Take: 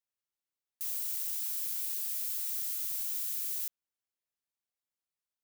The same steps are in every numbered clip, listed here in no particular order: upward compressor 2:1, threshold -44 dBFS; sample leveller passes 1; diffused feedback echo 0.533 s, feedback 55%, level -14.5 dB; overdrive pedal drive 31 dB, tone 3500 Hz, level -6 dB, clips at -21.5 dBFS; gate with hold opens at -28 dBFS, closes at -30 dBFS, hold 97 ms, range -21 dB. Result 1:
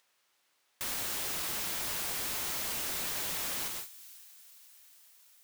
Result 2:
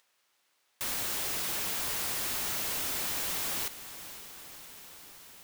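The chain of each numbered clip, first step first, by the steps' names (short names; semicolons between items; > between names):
diffused feedback echo > sample leveller > upward compressor > gate with hold > overdrive pedal; gate with hold > overdrive pedal > diffused feedback echo > upward compressor > sample leveller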